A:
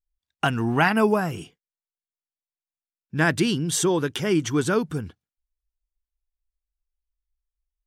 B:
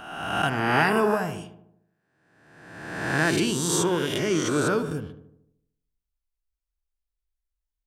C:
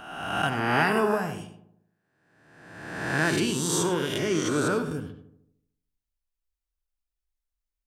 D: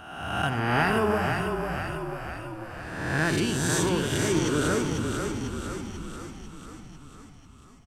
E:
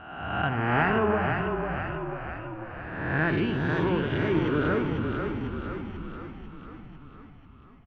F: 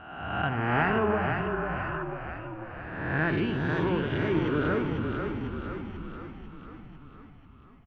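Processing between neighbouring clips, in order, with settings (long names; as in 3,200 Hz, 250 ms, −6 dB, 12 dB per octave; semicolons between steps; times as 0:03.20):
peak hold with a rise ahead of every peak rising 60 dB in 1.29 s; feedback echo with a low-pass in the loop 75 ms, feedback 57%, low-pass 1,500 Hz, level −10 dB; level −5 dB
reverb whose tail is shaped and stops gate 120 ms rising, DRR 11 dB; level −2 dB
parametric band 80 Hz +13 dB 1 octave; on a send: echo with shifted repeats 495 ms, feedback 60%, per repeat −31 Hz, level −5 dB; on the sum: level −1.5 dB
inverse Chebyshev low-pass filter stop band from 10,000 Hz, stop band 70 dB
healed spectral selection 0:01.46–0:02.00, 830–1,800 Hz before; level −1.5 dB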